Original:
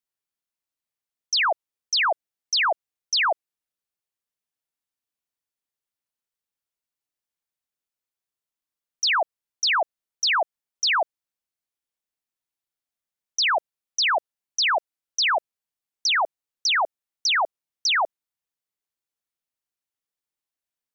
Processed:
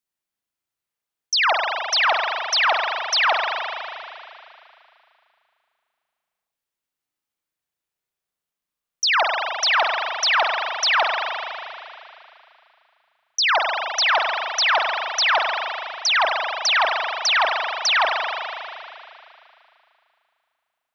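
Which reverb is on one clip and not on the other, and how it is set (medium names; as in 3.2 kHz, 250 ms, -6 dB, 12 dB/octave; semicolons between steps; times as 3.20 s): spring tank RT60 2.7 s, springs 37 ms, chirp 35 ms, DRR 0 dB; trim +2 dB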